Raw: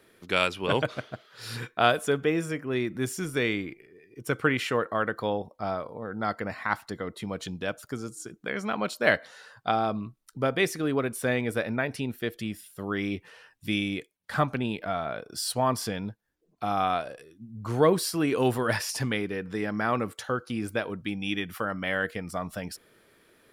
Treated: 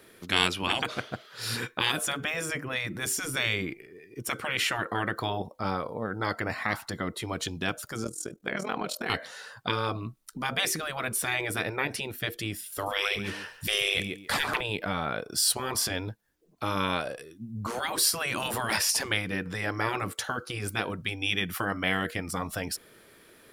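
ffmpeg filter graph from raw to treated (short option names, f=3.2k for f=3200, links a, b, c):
-filter_complex "[0:a]asettb=1/sr,asplit=3[a][b][c];[a]atrim=end=8.044[d];[b]atrim=start=8.04:end=9.1,asetpts=PTS-STARTPTS,afade=t=in:d=0.004:c=qsin,afade=t=out:st=1.056:d=0.004:c=qsin,equalizer=f=550:w=2.7:g=14.5,acompressor=threshold=-22dB:ratio=5:attack=3.2:release=140:knee=1:detection=peak,tremolo=f=41:d=0.788[e];[c]atrim=start=9.096[f];[d][e]acrossfade=d=0.004:c1=hsin:c2=qsin[g];[g][f]acrossfade=d=0.004:c1=qsin:c2=hsin,asettb=1/sr,asplit=3[h][i][j];[h]atrim=end=12.724[k];[i]atrim=start=12.72:end=14.61,asetpts=PTS-STARTPTS,afade=t=in:d=0.004:c=qsin,afade=t=out:st=1.886:d=0.004:c=qsin,acontrast=89,aecho=1:1:139|278:0.237|0.0379,atrim=end_sample=83349[l];[j]atrim=start=14.606[m];[k][l]acrossfade=d=0.004:c1=hsin:c2=qsin[n];[n][m]acrossfade=d=0.004:c1=qsin:c2=hsin,afftfilt=real='re*lt(hypot(re,im),0.141)':imag='im*lt(hypot(re,im),0.141)':win_size=1024:overlap=0.75,highshelf=f=4.9k:g=4.5,volume=4.5dB"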